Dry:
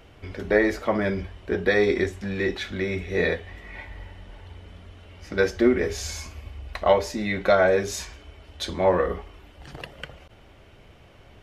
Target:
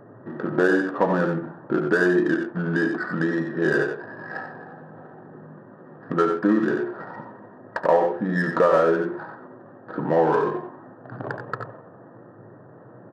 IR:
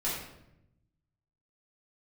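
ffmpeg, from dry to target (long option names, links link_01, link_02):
-filter_complex "[0:a]asplit=2[link_01][link_02];[1:a]atrim=start_sample=2205,afade=type=out:start_time=0.2:duration=0.01,atrim=end_sample=9261[link_03];[link_02][link_03]afir=irnorm=-1:irlink=0,volume=-24dB[link_04];[link_01][link_04]amix=inputs=2:normalize=0,asetrate=38367,aresample=44100,afftfilt=real='re*between(b*sr/4096,100,1900)':imag='im*between(b*sr/4096,100,1900)':win_size=4096:overlap=0.75,adynamicsmooth=sensitivity=3.5:basefreq=1400,aecho=1:1:73|90:0.251|0.376,acompressor=threshold=-33dB:ratio=2,adynamicequalizer=threshold=0.00398:dfrequency=1000:dqfactor=1.1:tfrequency=1000:tqfactor=1.1:attack=5:release=100:ratio=0.375:range=2.5:mode=boostabove:tftype=bell,volume=8dB"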